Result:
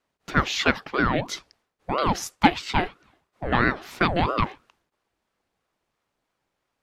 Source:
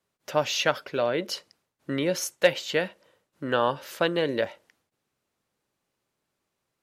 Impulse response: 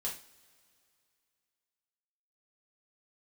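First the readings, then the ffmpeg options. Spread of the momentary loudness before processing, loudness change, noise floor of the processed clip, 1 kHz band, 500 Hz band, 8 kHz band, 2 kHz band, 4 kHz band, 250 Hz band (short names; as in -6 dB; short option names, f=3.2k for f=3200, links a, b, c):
11 LU, +2.5 dB, -80 dBFS, +7.5 dB, -4.0 dB, -1.5 dB, +5.0 dB, +0.5 dB, +5.5 dB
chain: -af "highshelf=f=6.8k:g=-11,aeval=exprs='val(0)*sin(2*PI*540*n/s+540*0.7/3*sin(2*PI*3*n/s))':c=same,volume=6dB"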